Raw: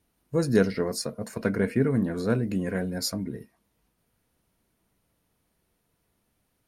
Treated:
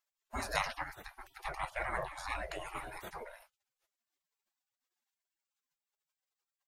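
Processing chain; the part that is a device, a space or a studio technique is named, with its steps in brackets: spectral gate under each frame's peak -30 dB weak; 1.52–2.60 s: low-pass 11 kHz 12 dB/octave; through cloth (treble shelf 2.3 kHz -16.5 dB); trim +16 dB

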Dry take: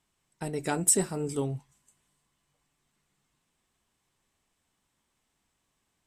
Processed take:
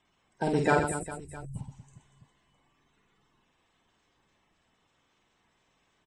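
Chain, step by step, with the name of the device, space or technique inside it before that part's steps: 0.79–1.56 s: inverse Chebyshev band-stop 450–2600 Hz, stop band 80 dB; clip after many re-uploads (low-pass 7.4 kHz 24 dB/octave; coarse spectral quantiser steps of 30 dB); treble shelf 7 kHz -7.5 dB; reverse bouncing-ball echo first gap 50 ms, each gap 1.5×, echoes 5; trim +6 dB

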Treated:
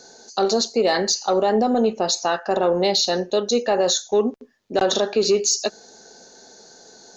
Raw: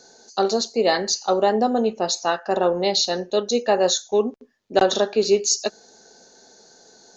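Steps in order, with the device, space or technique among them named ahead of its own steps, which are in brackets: soft clipper into limiter (saturation -6 dBFS, distortion -25 dB; peak limiter -14.5 dBFS, peak gain reduction 7 dB); trim +4 dB

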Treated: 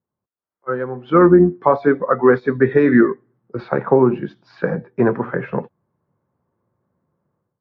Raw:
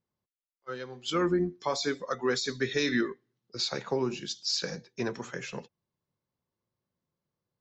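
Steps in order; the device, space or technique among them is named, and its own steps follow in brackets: high-pass 67 Hz; action camera in a waterproof case (low-pass 1.5 kHz 24 dB/octave; level rider gain up to 14 dB; trim +3 dB; AAC 48 kbps 22.05 kHz)

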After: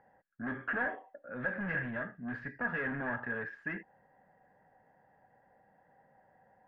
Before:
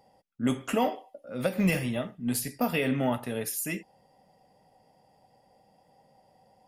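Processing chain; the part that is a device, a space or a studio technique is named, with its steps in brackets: overdriven synthesiser ladder filter (saturation -30.5 dBFS, distortion -7 dB; four-pole ladder low-pass 1.7 kHz, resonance 90%); trim +8 dB

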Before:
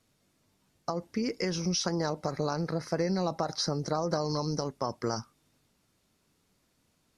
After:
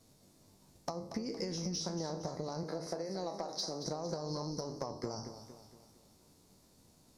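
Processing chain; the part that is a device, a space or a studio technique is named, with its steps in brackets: spectral sustain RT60 0.38 s; high-order bell 2 kHz -8.5 dB; 2.63–3.87 s: high-pass 260 Hz 12 dB/octave; drum-bus smash (transient shaper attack +5 dB, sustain 0 dB; compression 12:1, threshold -40 dBFS, peak gain reduction 19.5 dB; saturation -30 dBFS, distortion -21 dB); modulated delay 231 ms, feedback 48%, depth 73 cents, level -10.5 dB; trim +5.5 dB

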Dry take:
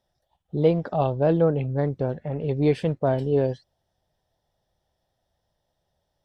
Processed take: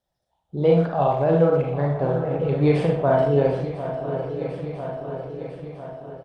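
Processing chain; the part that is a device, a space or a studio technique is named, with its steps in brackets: dynamic bell 1.2 kHz, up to +5 dB, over -36 dBFS, Q 0.83; shuffle delay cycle 998 ms, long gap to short 3:1, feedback 55%, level -14 dB; speakerphone in a meeting room (reverberation RT60 0.45 s, pre-delay 31 ms, DRR -1 dB; speakerphone echo 120 ms, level -10 dB; level rider gain up to 10 dB; trim -5.5 dB; Opus 32 kbps 48 kHz)

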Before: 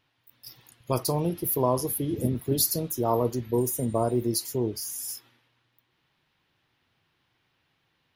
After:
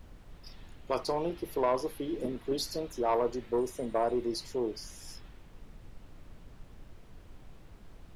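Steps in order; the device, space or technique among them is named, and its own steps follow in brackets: aircraft cabin announcement (band-pass 370–3900 Hz; saturation -19 dBFS, distortion -16 dB; brown noise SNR 13 dB)

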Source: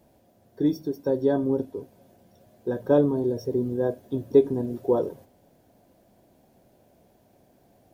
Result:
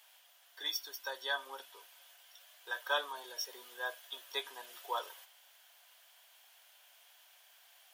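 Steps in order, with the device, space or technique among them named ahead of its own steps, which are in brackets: headphones lying on a table (high-pass 1.2 kHz 24 dB/octave; peaking EQ 3.1 kHz +10 dB 0.4 oct); trim +8 dB

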